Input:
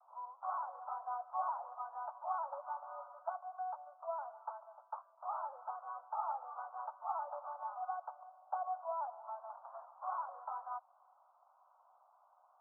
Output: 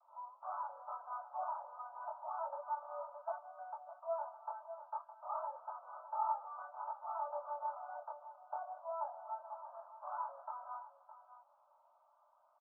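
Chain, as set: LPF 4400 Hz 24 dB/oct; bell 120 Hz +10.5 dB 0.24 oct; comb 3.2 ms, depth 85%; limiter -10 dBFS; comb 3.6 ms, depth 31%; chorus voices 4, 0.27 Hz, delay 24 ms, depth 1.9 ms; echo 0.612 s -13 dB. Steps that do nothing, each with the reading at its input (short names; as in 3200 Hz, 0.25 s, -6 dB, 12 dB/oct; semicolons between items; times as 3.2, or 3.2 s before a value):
LPF 4400 Hz: input band ends at 1500 Hz; bell 120 Hz: input band starts at 480 Hz; limiter -10 dBFS: input peak -22.5 dBFS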